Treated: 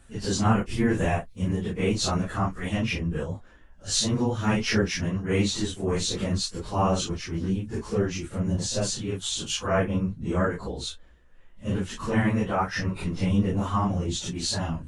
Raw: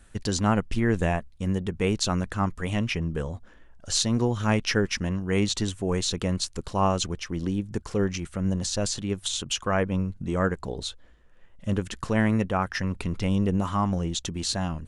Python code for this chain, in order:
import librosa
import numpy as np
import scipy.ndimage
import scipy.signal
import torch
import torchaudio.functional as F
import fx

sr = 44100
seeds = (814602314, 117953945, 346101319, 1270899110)

y = fx.phase_scramble(x, sr, seeds[0], window_ms=100)
y = fx.high_shelf(y, sr, hz=6800.0, db=7.5, at=(0.65, 1.42))